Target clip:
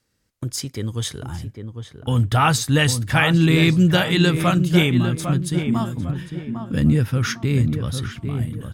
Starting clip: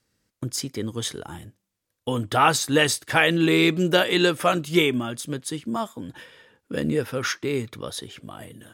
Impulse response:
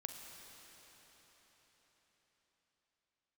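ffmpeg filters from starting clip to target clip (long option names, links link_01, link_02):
-filter_complex "[0:a]asubboost=boost=12:cutoff=130,asplit=2[link_01][link_02];[link_02]adelay=802,lowpass=frequency=1500:poles=1,volume=-7dB,asplit=2[link_03][link_04];[link_04]adelay=802,lowpass=frequency=1500:poles=1,volume=0.37,asplit=2[link_05][link_06];[link_06]adelay=802,lowpass=frequency=1500:poles=1,volume=0.37,asplit=2[link_07][link_08];[link_08]adelay=802,lowpass=frequency=1500:poles=1,volume=0.37[link_09];[link_03][link_05][link_07][link_09]amix=inputs=4:normalize=0[link_10];[link_01][link_10]amix=inputs=2:normalize=0,volume=1dB"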